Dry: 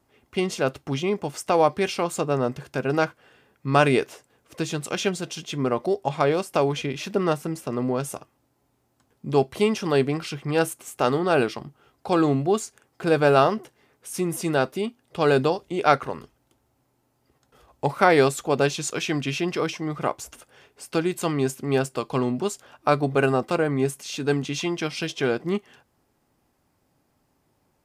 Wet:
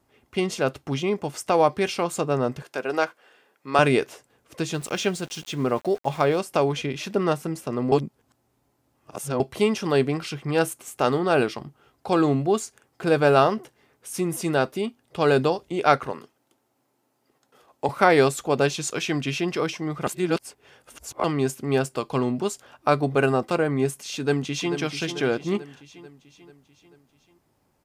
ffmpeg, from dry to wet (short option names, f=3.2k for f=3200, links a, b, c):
-filter_complex "[0:a]asettb=1/sr,asplit=3[a][b][c];[a]atrim=end=2.624[d];[b]atrim=start=2.62:end=3.79,asetpts=PTS-STARTPTS,afade=t=in:d=0.004:c=qsin,afade=t=out:st=1.166:d=0.004:c=qsin,highpass=380[e];[c]atrim=start=3.786[f];[d][e]acrossfade=d=0.004:c1=hsin:c2=qsin[g];[g][f]acrossfade=d=0.004:c1=qsin:c2=hsin,asettb=1/sr,asplit=3[h][i][j];[h]atrim=end=4.744[k];[i]atrim=start=4.74:end=6.38,asetpts=PTS-STARTPTS,afade=t=in:d=0.004:c=qsin,afade=t=out:st=1.636:d=0.004:c=qsin,aeval=exprs='val(0)*gte(abs(val(0)),0.00841)':c=same[l];[j]atrim=start=6.376[m];[k][l]acrossfade=d=0.004:c1=hsin:c2=qsin[n];[n][m]acrossfade=d=0.004:c1=qsin:c2=hsin,asettb=1/sr,asplit=3[o][p][q];[o]atrim=end=16.124[r];[p]atrim=start=16.12:end=17.89,asetpts=PTS-STARTPTS,afade=t=in:d=0.004:c=qsin,afade=t=out:st=1.766:d=0.004:c=qsin,highpass=210[s];[q]atrim=start=17.886[t];[r][s]acrossfade=d=0.004:c1=hsin:c2=qsin[u];[u][t]acrossfade=d=0.004:c1=qsin:c2=hsin,asplit=2[v][w];[w]afade=t=in:st=24.15:d=0.01,afade=t=out:st=24.74:d=0.01,aecho=0:1:440|880|1320|1760|2200|2640:0.334965|0.184231|0.101327|0.0557299|0.0306514|0.0168583[x];[v][x]amix=inputs=2:normalize=0,asplit=5[y][z][aa][ab][ac];[y]atrim=end=7.922[ad];[z]atrim=start=7.918:end=9.402,asetpts=PTS-STARTPTS,areverse[ae];[aa]atrim=start=9.398:end=20.072[af];[ab]atrim=start=20.068:end=21.242,asetpts=PTS-STARTPTS,areverse[ag];[ac]atrim=start=21.238[ah];[ad][ae]acrossfade=d=0.004:c1=hsin:c2=hsin[ai];[ai][af]acrossfade=d=0.004:c1=hsin:c2=hsin[aj];[aj][ag]acrossfade=d=0.004:c1=hsin:c2=hsin[ak];[ak][ah]acrossfade=d=0.004:c1=hsin:c2=hsin"